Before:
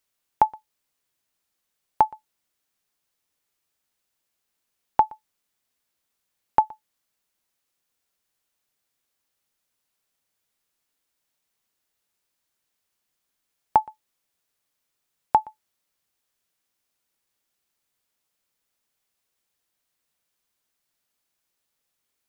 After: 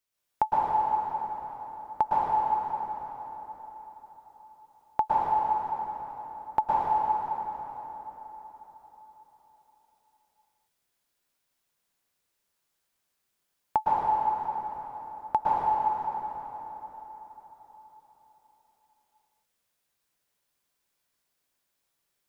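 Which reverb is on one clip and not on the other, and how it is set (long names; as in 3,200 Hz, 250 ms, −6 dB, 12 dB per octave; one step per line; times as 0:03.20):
dense smooth reverb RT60 4.4 s, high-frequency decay 0.7×, pre-delay 100 ms, DRR −8 dB
level −7.5 dB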